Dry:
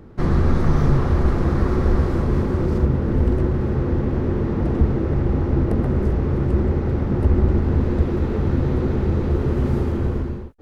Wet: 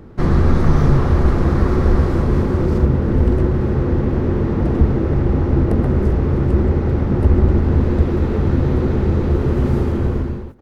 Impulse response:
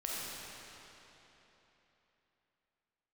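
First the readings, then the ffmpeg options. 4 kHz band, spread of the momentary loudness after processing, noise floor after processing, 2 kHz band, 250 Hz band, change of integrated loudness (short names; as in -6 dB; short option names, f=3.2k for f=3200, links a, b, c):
n/a, 3 LU, -21 dBFS, +3.5 dB, +3.5 dB, +3.5 dB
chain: -af "areverse,acompressor=mode=upward:threshold=-34dB:ratio=2.5,areverse,aecho=1:1:159|318|477:0.0668|0.0301|0.0135,volume=3.5dB"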